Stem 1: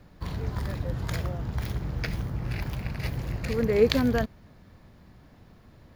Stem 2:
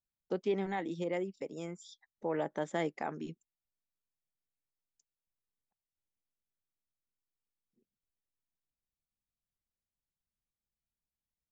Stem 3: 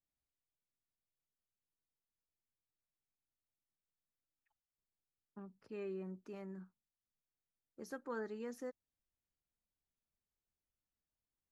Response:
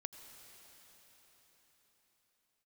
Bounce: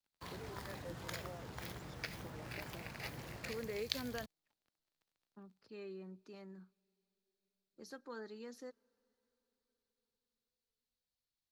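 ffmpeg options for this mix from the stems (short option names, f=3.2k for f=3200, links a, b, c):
-filter_complex "[0:a]highpass=f=510:p=1,acrusher=bits=7:mix=0:aa=0.5,volume=-6.5dB[a];[1:a]acompressor=threshold=-39dB:ratio=6,acrossover=split=700[b][c];[b]aeval=exprs='val(0)*(1-1/2+1/2*cos(2*PI*5.4*n/s))':c=same[d];[c]aeval=exprs='val(0)*(1-1/2-1/2*cos(2*PI*5.4*n/s))':c=same[e];[d][e]amix=inputs=2:normalize=0,volume=-7.5dB,asplit=2[f][g];[g]volume=-19.5dB[h];[2:a]equalizer=f=4.2k:t=o:w=0.74:g=14,volume=-5.5dB,asplit=2[i][j];[j]volume=-19.5dB[k];[3:a]atrim=start_sample=2205[l];[h][k]amix=inputs=2:normalize=0[m];[m][l]afir=irnorm=-1:irlink=0[n];[a][f][i][n]amix=inputs=4:normalize=0,acrossover=split=130|3000[o][p][q];[p]acompressor=threshold=-41dB:ratio=6[r];[o][r][q]amix=inputs=3:normalize=0"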